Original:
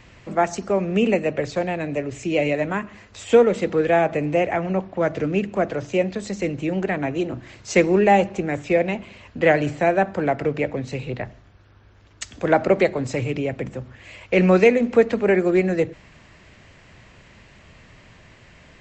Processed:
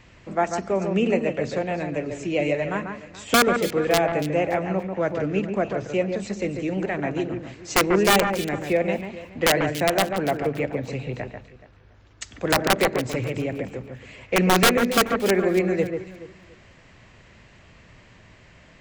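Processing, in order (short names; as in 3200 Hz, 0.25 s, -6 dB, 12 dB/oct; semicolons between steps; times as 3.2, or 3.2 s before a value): wrapped overs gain 7.5 dB; echo with dull and thin repeats by turns 0.142 s, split 2200 Hz, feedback 51%, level -6 dB; gain -3 dB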